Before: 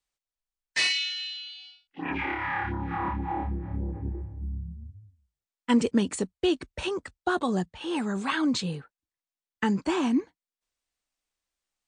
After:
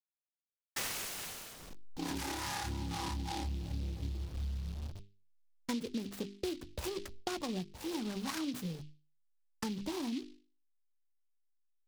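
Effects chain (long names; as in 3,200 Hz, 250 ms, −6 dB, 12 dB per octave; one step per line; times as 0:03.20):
hold until the input has moved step −40.5 dBFS
noise gate with hold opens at −42 dBFS
speech leveller within 3 dB 2 s
spectral tilt −1.5 dB per octave
mains-hum notches 50/100/150/200/250/300/350/400 Hz
downward compressor 6 to 1, threshold −30 dBFS, peak gain reduction 15.5 dB
short delay modulated by noise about 3,500 Hz, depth 0.11 ms
level −5 dB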